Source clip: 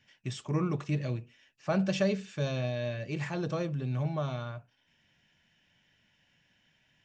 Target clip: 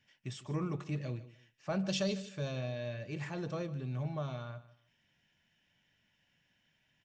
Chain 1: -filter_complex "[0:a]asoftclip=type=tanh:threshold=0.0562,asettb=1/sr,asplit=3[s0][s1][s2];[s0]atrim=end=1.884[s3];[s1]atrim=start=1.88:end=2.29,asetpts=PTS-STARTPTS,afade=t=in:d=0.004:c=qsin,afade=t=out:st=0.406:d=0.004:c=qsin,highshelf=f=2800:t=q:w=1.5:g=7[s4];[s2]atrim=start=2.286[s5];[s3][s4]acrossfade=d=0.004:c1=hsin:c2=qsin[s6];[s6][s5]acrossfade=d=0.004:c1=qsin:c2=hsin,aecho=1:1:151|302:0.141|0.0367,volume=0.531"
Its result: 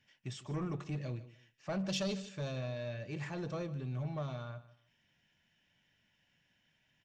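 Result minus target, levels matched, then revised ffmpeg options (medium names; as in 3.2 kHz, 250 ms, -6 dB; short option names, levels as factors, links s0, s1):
saturation: distortion +13 dB
-filter_complex "[0:a]asoftclip=type=tanh:threshold=0.15,asettb=1/sr,asplit=3[s0][s1][s2];[s0]atrim=end=1.884[s3];[s1]atrim=start=1.88:end=2.29,asetpts=PTS-STARTPTS,afade=t=in:d=0.004:c=qsin,afade=t=out:st=0.406:d=0.004:c=qsin,highshelf=f=2800:t=q:w=1.5:g=7[s4];[s2]atrim=start=2.286[s5];[s3][s4]acrossfade=d=0.004:c1=hsin:c2=qsin[s6];[s6][s5]acrossfade=d=0.004:c1=qsin:c2=hsin,aecho=1:1:151|302:0.141|0.0367,volume=0.531"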